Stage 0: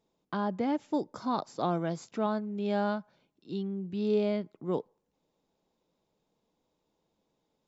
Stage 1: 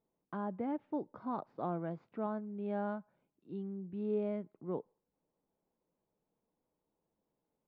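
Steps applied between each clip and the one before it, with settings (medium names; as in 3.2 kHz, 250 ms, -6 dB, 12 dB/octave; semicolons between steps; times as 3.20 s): Bessel low-pass 1.6 kHz, order 4; trim -7 dB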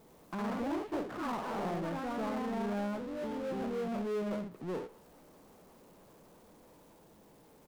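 early reflections 54 ms -14.5 dB, 64 ms -13 dB; ever faster or slower copies 95 ms, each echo +2 st, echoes 3; power-law waveshaper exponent 0.5; trim -6.5 dB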